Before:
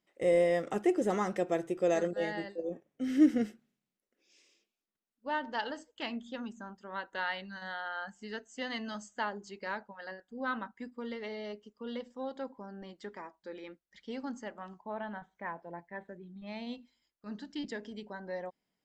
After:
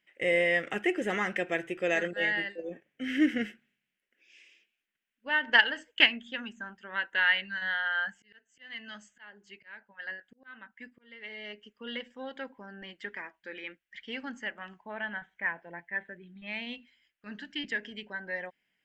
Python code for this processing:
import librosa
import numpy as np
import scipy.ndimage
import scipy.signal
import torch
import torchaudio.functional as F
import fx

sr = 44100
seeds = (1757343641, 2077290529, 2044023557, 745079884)

y = fx.transient(x, sr, attack_db=11, sustain_db=2, at=(5.46, 6.08))
y = fx.auto_swell(y, sr, attack_ms=786.0, at=(8.07, 11.58))
y = fx.band_shelf(y, sr, hz=2200.0, db=15.5, octaves=1.3)
y = y * 10.0 ** (-2.0 / 20.0)